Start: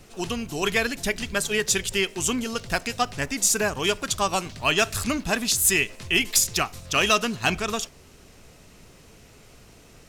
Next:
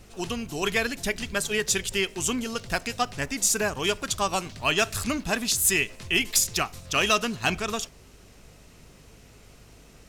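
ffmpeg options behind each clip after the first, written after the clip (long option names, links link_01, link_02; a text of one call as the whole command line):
ffmpeg -i in.wav -af "aeval=exprs='val(0)+0.00224*(sin(2*PI*50*n/s)+sin(2*PI*2*50*n/s)/2+sin(2*PI*3*50*n/s)/3+sin(2*PI*4*50*n/s)/4+sin(2*PI*5*50*n/s)/5)':channel_layout=same,volume=-2dB" out.wav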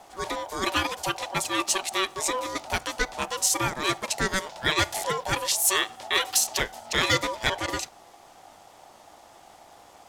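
ffmpeg -i in.wav -af "aeval=exprs='val(0)*sin(2*PI*760*n/s)':channel_layout=same,volume=2.5dB" out.wav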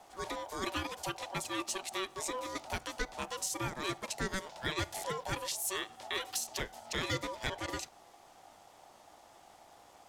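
ffmpeg -i in.wav -filter_complex "[0:a]acrossover=split=440[link_01][link_02];[link_02]acompressor=threshold=-31dB:ratio=2[link_03];[link_01][link_03]amix=inputs=2:normalize=0,volume=-7dB" out.wav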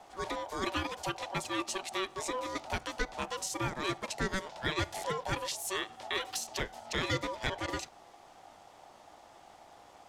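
ffmpeg -i in.wav -af "highshelf=frequency=8200:gain=-10.5,volume=3dB" out.wav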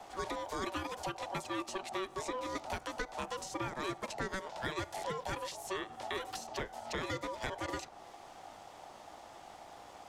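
ffmpeg -i in.wav -filter_complex "[0:a]acrossover=split=330|1700|6100[link_01][link_02][link_03][link_04];[link_01]acompressor=threshold=-48dB:ratio=4[link_05];[link_02]acompressor=threshold=-42dB:ratio=4[link_06];[link_03]acompressor=threshold=-52dB:ratio=4[link_07];[link_04]acompressor=threshold=-58dB:ratio=4[link_08];[link_05][link_06][link_07][link_08]amix=inputs=4:normalize=0,volume=3.5dB" out.wav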